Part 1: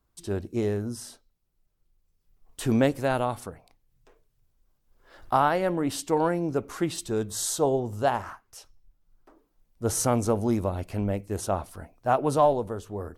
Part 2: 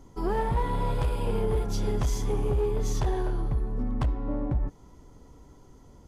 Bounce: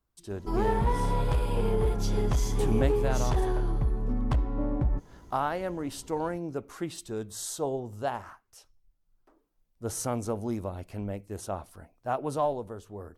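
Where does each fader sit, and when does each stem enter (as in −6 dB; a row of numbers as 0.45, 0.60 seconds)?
−7.0, +0.5 decibels; 0.00, 0.30 seconds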